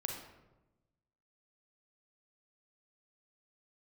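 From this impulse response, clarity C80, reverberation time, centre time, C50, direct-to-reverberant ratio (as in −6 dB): 6.5 dB, 1.0 s, 41 ms, 3.5 dB, 1.5 dB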